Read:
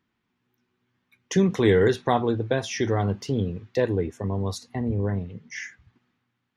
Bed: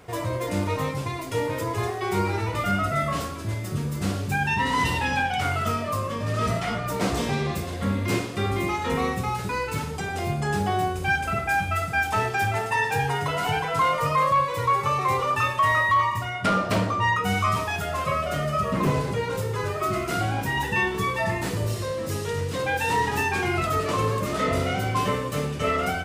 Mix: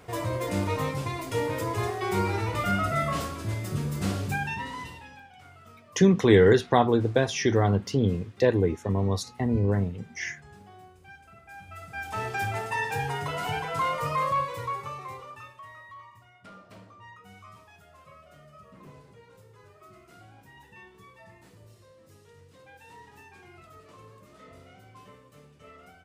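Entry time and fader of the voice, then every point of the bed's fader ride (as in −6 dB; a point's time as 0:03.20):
4.65 s, +1.5 dB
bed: 0:04.26 −2 dB
0:05.24 −26 dB
0:11.39 −26 dB
0:12.31 −5.5 dB
0:14.41 −5.5 dB
0:15.71 −26.5 dB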